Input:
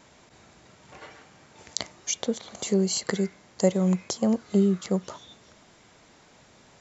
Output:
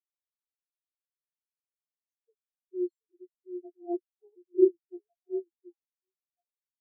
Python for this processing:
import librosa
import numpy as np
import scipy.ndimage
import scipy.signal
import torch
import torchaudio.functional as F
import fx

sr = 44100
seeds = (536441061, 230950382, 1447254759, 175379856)

y = fx.chorus_voices(x, sr, voices=4, hz=1.3, base_ms=14, depth_ms=3.0, mix_pct=55)
y = fx.pitch_keep_formants(y, sr, semitones=11.0)
y = fx.echo_stepped(y, sr, ms=724, hz=290.0, octaves=1.4, feedback_pct=70, wet_db=-1.5)
y = fx.spectral_expand(y, sr, expansion=4.0)